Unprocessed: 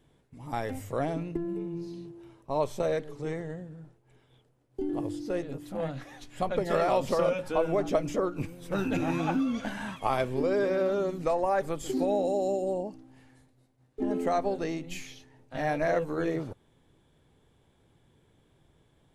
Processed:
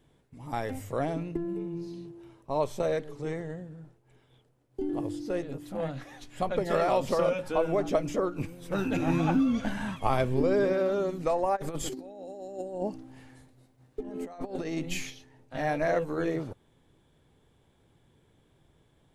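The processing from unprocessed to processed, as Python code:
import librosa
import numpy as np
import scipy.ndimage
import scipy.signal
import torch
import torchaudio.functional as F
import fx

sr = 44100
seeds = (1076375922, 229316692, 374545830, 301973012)

y = fx.low_shelf(x, sr, hz=190.0, db=9.5, at=(9.06, 10.73))
y = fx.over_compress(y, sr, threshold_db=-34.0, ratio=-0.5, at=(11.55, 15.09), fade=0.02)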